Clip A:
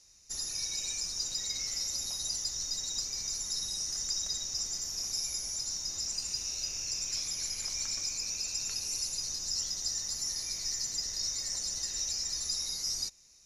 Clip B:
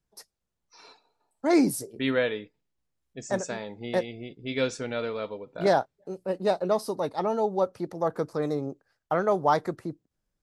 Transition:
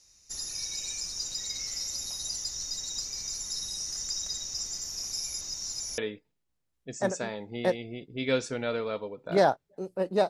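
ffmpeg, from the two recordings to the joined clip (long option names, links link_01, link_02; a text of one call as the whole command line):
ffmpeg -i cue0.wav -i cue1.wav -filter_complex "[0:a]apad=whole_dur=10.29,atrim=end=10.29,asplit=2[link_01][link_02];[link_01]atrim=end=5.412[link_03];[link_02]atrim=start=5.408:end=5.982,asetpts=PTS-STARTPTS,areverse[link_04];[1:a]atrim=start=2.268:end=6.58[link_05];[link_03][link_04]acrossfade=duration=0.004:curve1=hsin:curve2=hsin[link_06];[link_06][link_05]acrossfade=duration=0.004:curve1=hsin:curve2=hsin" out.wav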